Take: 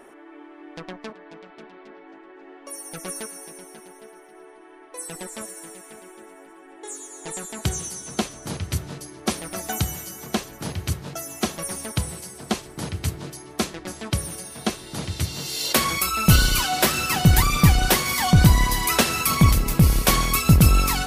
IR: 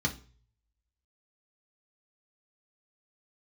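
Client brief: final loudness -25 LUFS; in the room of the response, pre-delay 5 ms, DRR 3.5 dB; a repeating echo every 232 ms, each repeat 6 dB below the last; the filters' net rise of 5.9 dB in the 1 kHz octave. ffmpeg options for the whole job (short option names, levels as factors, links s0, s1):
-filter_complex "[0:a]equalizer=f=1000:t=o:g=7.5,aecho=1:1:232|464|696|928|1160|1392:0.501|0.251|0.125|0.0626|0.0313|0.0157,asplit=2[s0][s1];[1:a]atrim=start_sample=2205,adelay=5[s2];[s1][s2]afir=irnorm=-1:irlink=0,volume=0.316[s3];[s0][s3]amix=inputs=2:normalize=0,volume=0.316"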